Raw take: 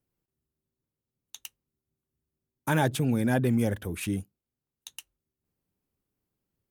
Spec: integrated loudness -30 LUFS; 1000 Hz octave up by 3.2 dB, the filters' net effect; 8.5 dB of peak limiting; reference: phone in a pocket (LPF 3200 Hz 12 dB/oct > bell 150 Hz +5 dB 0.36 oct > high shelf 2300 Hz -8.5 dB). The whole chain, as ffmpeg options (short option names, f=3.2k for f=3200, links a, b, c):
-af "equalizer=f=1k:t=o:g=5.5,alimiter=limit=-19dB:level=0:latency=1,lowpass=3.2k,equalizer=f=150:t=o:w=0.36:g=5,highshelf=f=2.3k:g=-8.5"